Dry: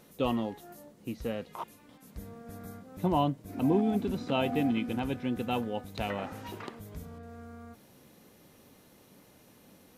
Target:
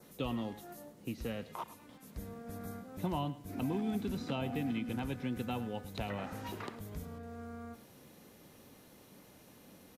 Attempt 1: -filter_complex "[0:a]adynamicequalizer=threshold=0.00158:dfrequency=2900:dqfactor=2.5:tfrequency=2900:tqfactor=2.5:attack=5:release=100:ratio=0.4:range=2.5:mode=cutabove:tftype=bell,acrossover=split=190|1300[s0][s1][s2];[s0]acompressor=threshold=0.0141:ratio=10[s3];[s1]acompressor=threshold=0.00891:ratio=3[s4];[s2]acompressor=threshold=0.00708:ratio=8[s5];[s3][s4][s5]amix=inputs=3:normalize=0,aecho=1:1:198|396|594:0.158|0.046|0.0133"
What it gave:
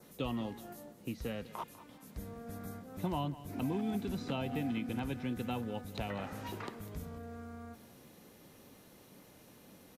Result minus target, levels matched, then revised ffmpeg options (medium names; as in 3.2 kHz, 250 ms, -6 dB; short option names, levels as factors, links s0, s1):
echo 91 ms late
-filter_complex "[0:a]adynamicequalizer=threshold=0.00158:dfrequency=2900:dqfactor=2.5:tfrequency=2900:tqfactor=2.5:attack=5:release=100:ratio=0.4:range=2.5:mode=cutabove:tftype=bell,acrossover=split=190|1300[s0][s1][s2];[s0]acompressor=threshold=0.0141:ratio=10[s3];[s1]acompressor=threshold=0.00891:ratio=3[s4];[s2]acompressor=threshold=0.00708:ratio=8[s5];[s3][s4][s5]amix=inputs=3:normalize=0,aecho=1:1:107|214|321:0.158|0.046|0.0133"